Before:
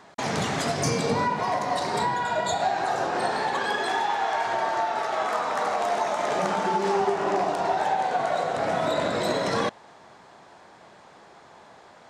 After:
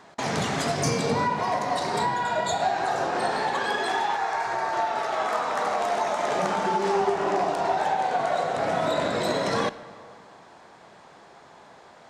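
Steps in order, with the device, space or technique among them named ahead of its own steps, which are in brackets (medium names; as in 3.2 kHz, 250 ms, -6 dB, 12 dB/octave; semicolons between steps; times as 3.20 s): saturated reverb return (on a send at -12 dB: reverberation RT60 1.9 s, pre-delay 3 ms + saturation -25 dBFS, distortion -11 dB); 4.16–4.73 s: on the sum: graphic EQ with 31 bands 250 Hz -10 dB, 630 Hz -5 dB, 3.15 kHz -10 dB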